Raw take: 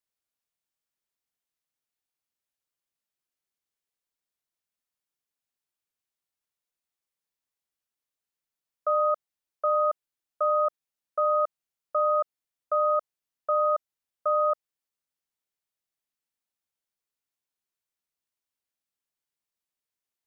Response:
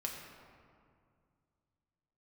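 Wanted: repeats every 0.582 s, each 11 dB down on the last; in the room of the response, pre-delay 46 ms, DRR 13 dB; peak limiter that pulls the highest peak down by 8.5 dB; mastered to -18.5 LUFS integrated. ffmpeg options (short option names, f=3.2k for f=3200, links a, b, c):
-filter_complex "[0:a]alimiter=level_in=1.5dB:limit=-24dB:level=0:latency=1,volume=-1.5dB,aecho=1:1:582|1164|1746:0.282|0.0789|0.0221,asplit=2[a][b];[1:a]atrim=start_sample=2205,adelay=46[c];[b][c]afir=irnorm=-1:irlink=0,volume=-13.5dB[d];[a][d]amix=inputs=2:normalize=0,volume=18dB"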